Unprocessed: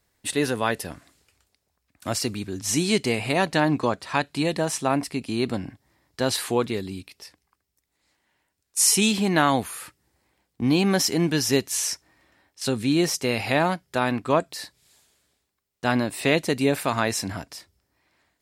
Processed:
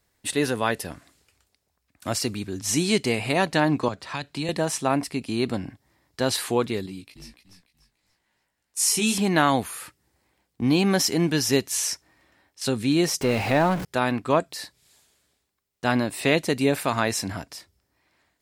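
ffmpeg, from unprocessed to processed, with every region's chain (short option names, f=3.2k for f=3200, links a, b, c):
-filter_complex "[0:a]asettb=1/sr,asplit=3[a][b][c];[a]atrim=end=3.884[d];[b]atrim=start=3.88:end=4.49,asetpts=PTS-STARTPTS,afade=t=in:d=0.004:c=qsin,afade=t=out:st=0.606:d=0.004:c=qsin,equalizer=f=11k:w=0.79:g=-6,acrossover=split=150|3000[e][f][g];[f]acompressor=threshold=-29dB:ratio=4:attack=3.2:release=140:knee=2.83:detection=peak[h];[e][h][g]amix=inputs=3:normalize=0[i];[c]atrim=start=4.486[j];[d][i]acrossfade=d=0.004:c1=hsin:c2=qsin[k];[k][j]acrossfade=d=0.004:c1=qsin:c2=hsin,asettb=1/sr,asplit=3[l][m][n];[l]atrim=end=6.864[o];[m]atrim=start=6.86:end=9.18,asetpts=PTS-STARTPTS,afade=t=in:d=0.004:c=qsin,afade=t=out:st=2.316:d=0.004:c=qsin,asplit=5[p][q][r][s][t];[q]adelay=292,afreqshift=-46,volume=-8dB[u];[r]adelay=584,afreqshift=-92,volume=-18.2dB[v];[s]adelay=876,afreqshift=-138,volume=-28.3dB[w];[t]adelay=1168,afreqshift=-184,volume=-38.5dB[x];[p][u][v][w][x]amix=inputs=5:normalize=0,atrim=end_sample=102312,flanger=delay=16.5:depth=2.2:speed=1.7[y];[n]atrim=start=9.176[z];[o][y]acrossfade=d=0.004:c1=hsin:c2=qsin[aa];[aa][z]acrossfade=d=0.004:c1=qsin:c2=hsin,asettb=1/sr,asplit=3[ab][ac][ad];[ab]atrim=end=13.214[ae];[ac]atrim=start=13.21:end=13.85,asetpts=PTS-STARTPTS,afade=t=in:d=0.004:c=qsin,afade=t=out:st=0.636:d=0.004:c=qsin,aeval=exprs='val(0)+0.5*0.0631*sgn(val(0))':c=same,highshelf=f=2.8k:g=-10.5[af];[ad]atrim=start=13.846[ag];[ae][af]acrossfade=d=0.004:c1=hsin:c2=qsin[ah];[ah][ag]acrossfade=d=0.004:c1=qsin:c2=hsin"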